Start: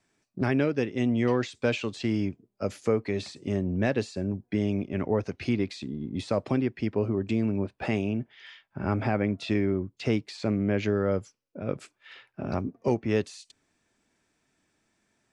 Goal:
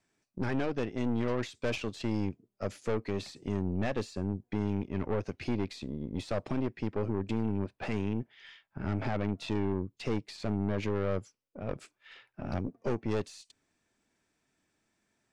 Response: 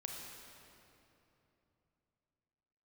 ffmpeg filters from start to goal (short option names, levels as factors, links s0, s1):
-af "aeval=exprs='(tanh(20*val(0)+0.75)-tanh(0.75))/20':c=same"